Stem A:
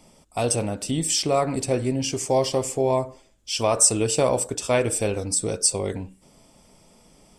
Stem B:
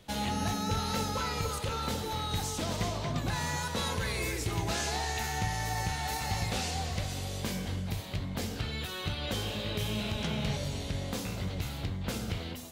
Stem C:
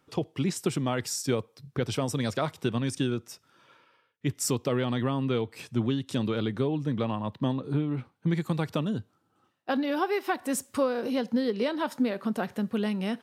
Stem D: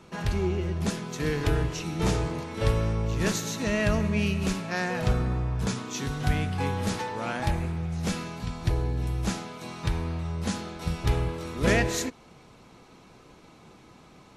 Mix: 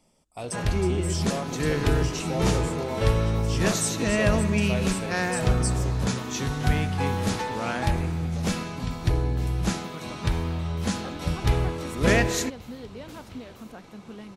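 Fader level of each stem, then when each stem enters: -11.5, -11.5, -13.5, +2.5 dB; 0.00, 1.00, 1.35, 0.40 s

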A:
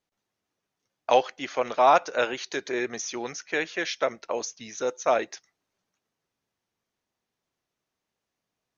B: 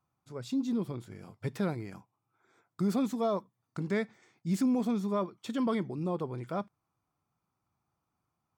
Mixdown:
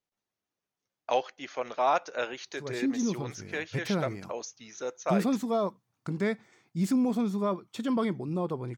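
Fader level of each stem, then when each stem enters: -7.0, +2.0 dB; 0.00, 2.30 s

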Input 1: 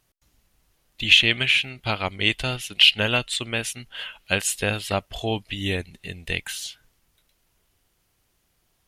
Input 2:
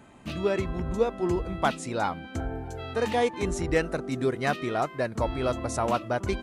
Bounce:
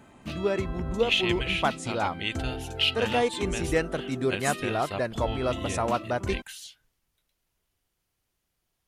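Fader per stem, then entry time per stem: -10.0, -0.5 dB; 0.00, 0.00 s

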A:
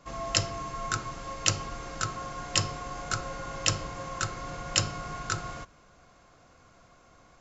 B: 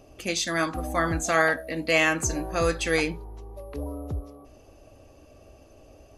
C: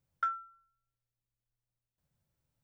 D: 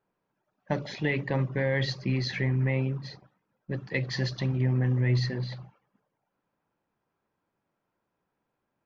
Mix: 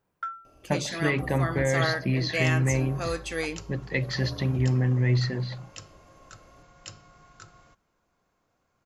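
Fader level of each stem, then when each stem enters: -17.5, -6.5, -1.5, +2.0 dB; 2.10, 0.45, 0.00, 0.00 s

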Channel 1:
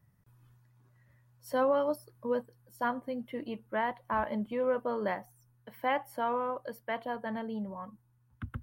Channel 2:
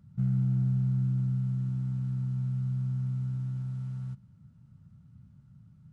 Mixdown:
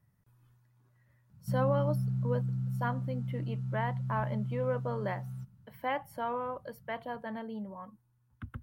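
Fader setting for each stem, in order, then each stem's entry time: -3.0, -4.5 dB; 0.00, 1.30 s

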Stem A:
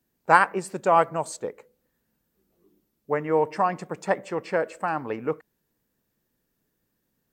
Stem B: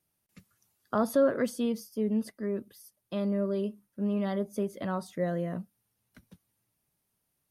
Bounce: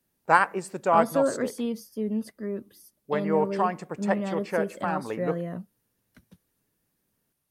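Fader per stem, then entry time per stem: -2.5, 0.0 dB; 0.00, 0.00 s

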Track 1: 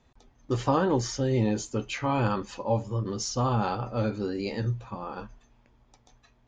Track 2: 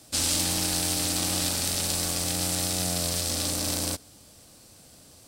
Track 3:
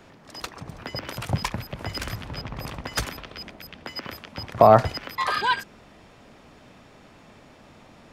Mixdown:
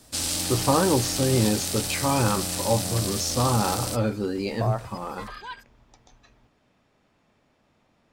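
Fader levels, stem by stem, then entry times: +3.0, -2.0, -15.5 dB; 0.00, 0.00, 0.00 s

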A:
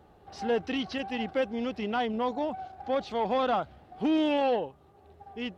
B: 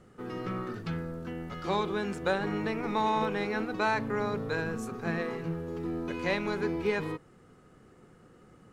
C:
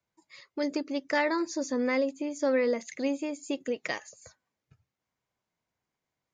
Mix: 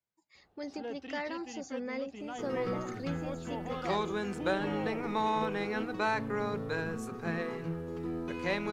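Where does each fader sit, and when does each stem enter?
-13.5, -2.5, -10.5 dB; 0.35, 2.20, 0.00 s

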